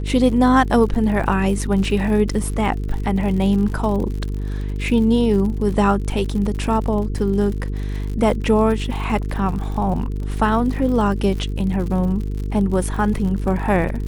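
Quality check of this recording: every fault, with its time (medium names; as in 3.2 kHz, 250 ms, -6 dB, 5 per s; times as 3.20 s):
buzz 50 Hz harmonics 9 -24 dBFS
crackle 74 per s -28 dBFS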